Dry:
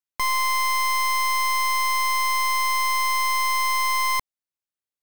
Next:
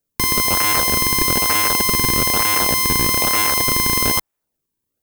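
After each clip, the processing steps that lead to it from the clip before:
spectral tilt +4.5 dB per octave
in parallel at −6 dB: sample-and-hold swept by an LFO 38×, swing 160% 1.1 Hz
on the sum: level −2.5 dB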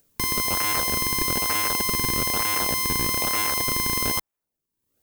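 upward compression, threshold −41 dBFS
level −7 dB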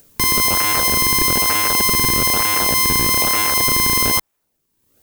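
boost into a limiter +14.5 dB
level −1 dB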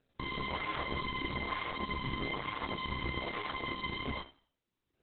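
tuned comb filter 68 Hz, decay 0.4 s, harmonics all, mix 80%
multi-voice chorus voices 2, 1.1 Hz, delay 29 ms, depth 3.3 ms
level −3 dB
Opus 8 kbit/s 48,000 Hz

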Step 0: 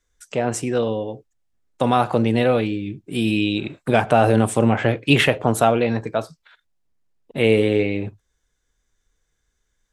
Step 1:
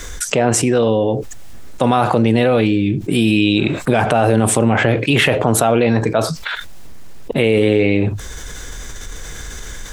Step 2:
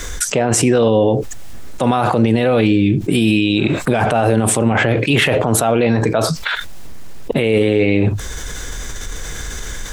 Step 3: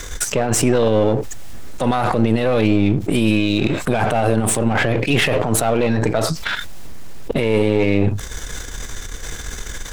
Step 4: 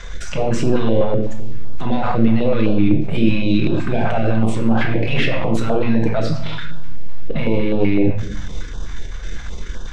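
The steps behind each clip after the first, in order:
boost into a limiter +8 dB; envelope flattener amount 70%; level −4.5 dB
brickwall limiter −8.5 dBFS, peak gain reduction 7 dB; level +3.5 dB
gain on one half-wave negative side −7 dB
high-frequency loss of the air 170 metres; convolution reverb RT60 0.85 s, pre-delay 6 ms, DRR 2 dB; notch on a step sequencer 7.9 Hz 310–2,100 Hz; level −2 dB

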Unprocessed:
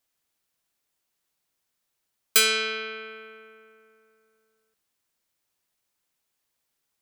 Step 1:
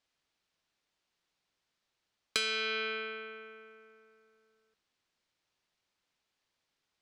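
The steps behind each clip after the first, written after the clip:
Chebyshev low-pass filter 4,400 Hz, order 2
downward compressor 10 to 1, threshold −30 dBFS, peak gain reduction 12.5 dB
level +1 dB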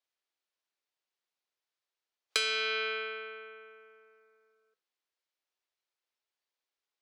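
high-pass filter 330 Hz 24 dB per octave
noise reduction from a noise print of the clip's start 11 dB
level +2 dB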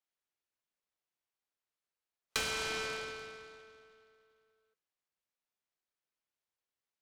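short delay modulated by noise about 1,800 Hz, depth 0.049 ms
level −4.5 dB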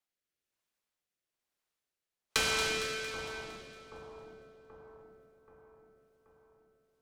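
rotating-speaker cabinet horn 1.1 Hz
echo with a time of its own for lows and highs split 1,100 Hz, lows 780 ms, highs 229 ms, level −8 dB
level +5.5 dB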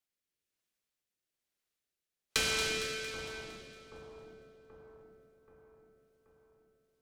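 parametric band 950 Hz −6.5 dB 1.2 octaves

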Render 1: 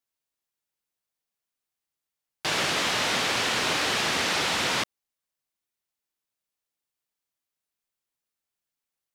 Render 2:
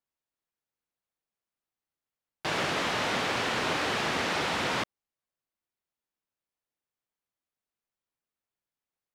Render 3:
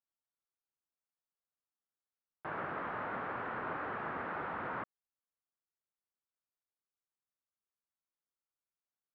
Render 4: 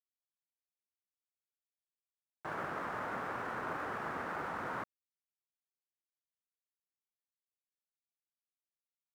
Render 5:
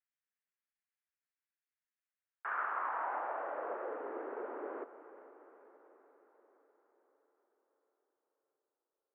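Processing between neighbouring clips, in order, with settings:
high-shelf EQ 2,800 Hz −11 dB
transistor ladder low-pass 1,700 Hz, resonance 40%; level −3 dB
dead-zone distortion −56.5 dBFS; level +1 dB
band-pass filter sweep 1,700 Hz → 350 Hz, 0:02.16–0:04.07; feedback delay with all-pass diffusion 451 ms, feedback 57%, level −14.5 dB; single-sideband voice off tune +70 Hz 190–3,000 Hz; level +7 dB

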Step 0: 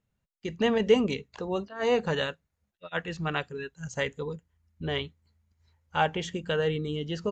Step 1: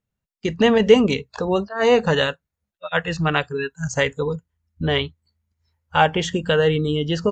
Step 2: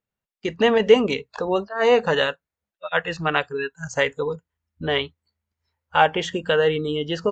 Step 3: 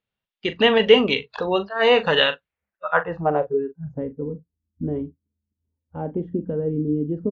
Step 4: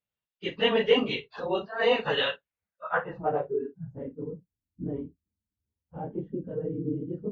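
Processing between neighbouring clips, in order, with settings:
noise reduction from a noise print of the clip's start 16 dB; in parallel at −2 dB: downward compressor, threshold −34 dBFS, peak gain reduction 17.5 dB; on the sum: level +7.5 dB
bass and treble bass −10 dB, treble −6 dB
low-pass filter sweep 3,400 Hz → 270 Hz, 0:02.39–0:03.79; double-tracking delay 40 ms −12 dB
random phases in long frames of 50 ms; level −8 dB

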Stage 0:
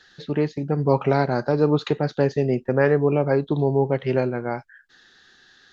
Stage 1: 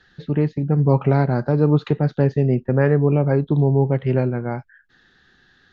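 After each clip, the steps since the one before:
bass and treble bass +10 dB, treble −11 dB
level −1.5 dB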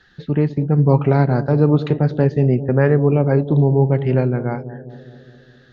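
bucket-brigade delay 205 ms, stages 1,024, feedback 61%, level −13 dB
level +2 dB

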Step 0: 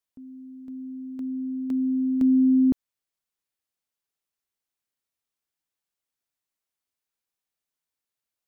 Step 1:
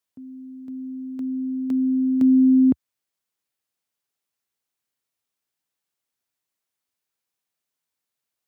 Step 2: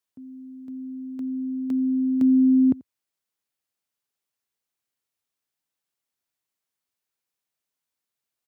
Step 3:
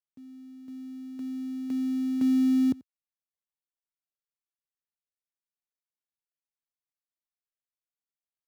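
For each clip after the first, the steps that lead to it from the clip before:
high-pass filter 74 Hz 24 dB per octave; level +3.5 dB
slap from a distant wall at 15 metres, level −24 dB; level −2 dB
gap after every zero crossing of 0.13 ms; level −5.5 dB

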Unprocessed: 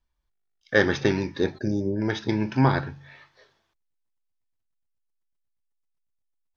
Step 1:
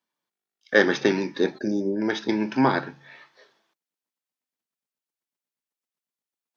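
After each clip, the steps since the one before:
high-pass filter 190 Hz 24 dB per octave
level +2 dB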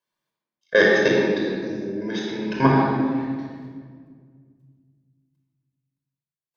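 notch filter 1,400 Hz, Q 18
output level in coarse steps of 18 dB
rectangular room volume 2,900 cubic metres, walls mixed, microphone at 5.2 metres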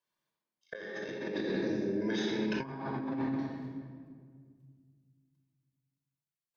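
compressor whose output falls as the input rises −27 dBFS, ratio −1
level −8.5 dB

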